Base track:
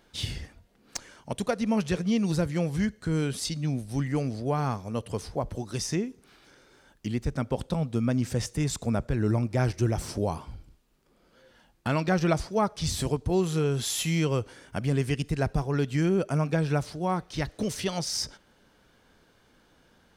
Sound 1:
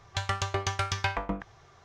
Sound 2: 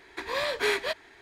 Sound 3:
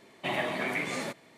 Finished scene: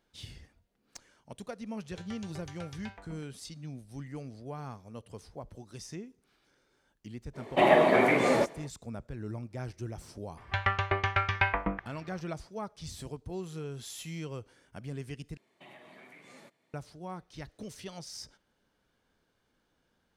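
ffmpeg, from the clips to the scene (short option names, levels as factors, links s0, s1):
-filter_complex "[1:a]asplit=2[s0][s1];[3:a]asplit=2[s2][s3];[0:a]volume=0.211[s4];[s0]bandreject=f=1100:w=5.2[s5];[s2]equalizer=f=520:w=0.43:g=14.5[s6];[s1]lowpass=f=2200:t=q:w=1.9[s7];[s3]alimiter=level_in=1.58:limit=0.0631:level=0:latency=1:release=388,volume=0.631[s8];[s4]asplit=2[s9][s10];[s9]atrim=end=15.374[s11];[s8]atrim=end=1.37,asetpts=PTS-STARTPTS,volume=0.168[s12];[s10]atrim=start=16.736[s13];[s5]atrim=end=1.84,asetpts=PTS-STARTPTS,volume=0.126,afade=t=in:d=0.004:c=hsin,afade=t=out:st=1.836:d=0.004:c=hsin,adelay=1810[s14];[s6]atrim=end=1.37,asetpts=PTS-STARTPTS,volume=0.891,afade=t=in:d=0.05,afade=t=out:st=1.32:d=0.05,adelay=7330[s15];[s7]atrim=end=1.84,asetpts=PTS-STARTPTS,afade=t=in:d=0.004:c=hsin,afade=t=out:st=1.836:d=0.004:c=hsin,adelay=10370[s16];[s11][s12]acrossfade=d=0.004:c1=hsin:c2=hsin[s17];[s17][s13]acrossfade=d=0.004:c1=hsin:c2=hsin[s18];[s18][s14][s15][s16]amix=inputs=4:normalize=0"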